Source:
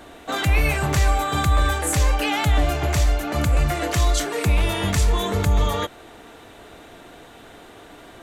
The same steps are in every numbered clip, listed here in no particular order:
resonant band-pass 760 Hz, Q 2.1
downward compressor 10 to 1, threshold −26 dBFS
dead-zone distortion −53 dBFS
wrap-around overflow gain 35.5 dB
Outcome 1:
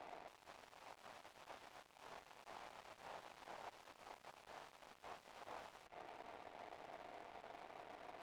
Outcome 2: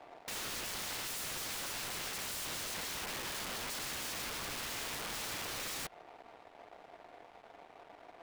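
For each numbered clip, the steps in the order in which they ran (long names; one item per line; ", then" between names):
downward compressor, then wrap-around overflow, then resonant band-pass, then dead-zone distortion
resonant band-pass, then dead-zone distortion, then wrap-around overflow, then downward compressor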